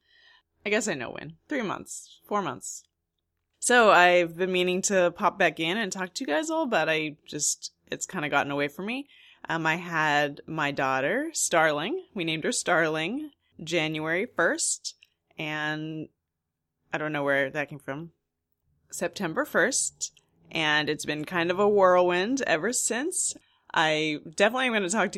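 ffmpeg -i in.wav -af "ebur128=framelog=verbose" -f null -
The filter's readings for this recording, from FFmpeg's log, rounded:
Integrated loudness:
  I:         -25.8 LUFS
  Threshold: -36.4 LUFS
Loudness range:
  LRA:         8.2 LU
  Threshold: -46.6 LUFS
  LRA low:   -31.5 LUFS
  LRA high:  -23.2 LUFS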